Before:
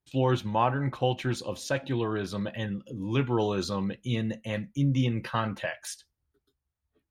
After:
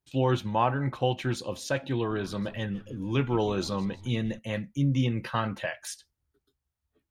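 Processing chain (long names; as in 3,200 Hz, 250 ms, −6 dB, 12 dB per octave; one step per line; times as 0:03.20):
0:01.94–0:04.39: echo with shifted repeats 158 ms, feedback 48%, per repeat −100 Hz, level −18 dB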